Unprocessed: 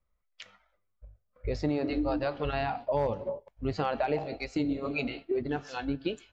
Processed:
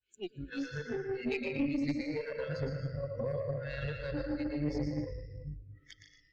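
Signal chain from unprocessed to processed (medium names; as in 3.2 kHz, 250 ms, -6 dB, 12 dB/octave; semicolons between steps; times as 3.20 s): reverse the whole clip; on a send at -3.5 dB: reverberation RT60 1.8 s, pre-delay 153 ms; on the sum: compression 6:1, threshold -28 dBFS, peak gain reduction 6 dB; elliptic band-stop 540–1500 Hz, stop band 40 dB; two-band feedback delay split 310 Hz, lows 353 ms, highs 115 ms, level -4 dB; dynamic bell 190 Hz, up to +6 dB, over -48 dBFS, Q 1.5; spectral noise reduction 23 dB; valve stage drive 23 dB, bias 0.55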